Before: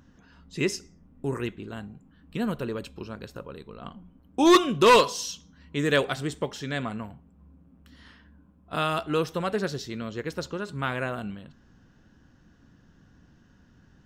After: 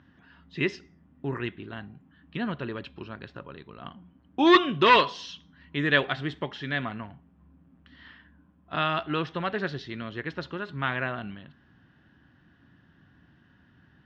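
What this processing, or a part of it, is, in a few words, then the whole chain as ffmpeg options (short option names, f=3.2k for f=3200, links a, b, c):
guitar cabinet: -af "highpass=85,equalizer=f=210:t=q:w=4:g=-4,equalizer=f=480:t=q:w=4:g=-8,equalizer=f=1.8k:t=q:w=4:g=6,equalizer=f=3.2k:t=q:w=4:g=3,lowpass=f=3.9k:w=0.5412,lowpass=f=3.9k:w=1.3066"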